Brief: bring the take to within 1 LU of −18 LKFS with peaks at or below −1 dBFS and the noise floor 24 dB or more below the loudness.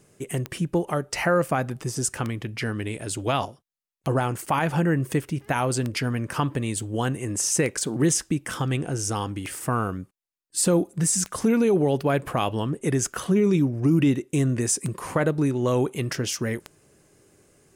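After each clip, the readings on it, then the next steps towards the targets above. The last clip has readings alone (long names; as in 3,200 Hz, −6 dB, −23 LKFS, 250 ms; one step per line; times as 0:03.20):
number of clicks 10; integrated loudness −25.0 LKFS; sample peak −8.5 dBFS; target loudness −18.0 LKFS
→ click removal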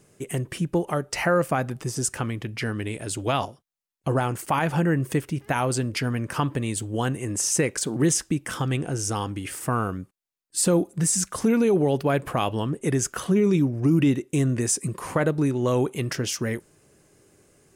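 number of clicks 0; integrated loudness −25.0 LKFS; sample peak −11.0 dBFS; target loudness −18.0 LKFS
→ level +7 dB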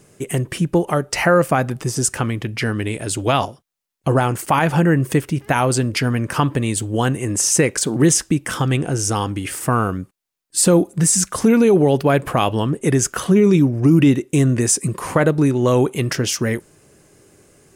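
integrated loudness −18.0 LKFS; sample peak −4.0 dBFS; background noise floor −60 dBFS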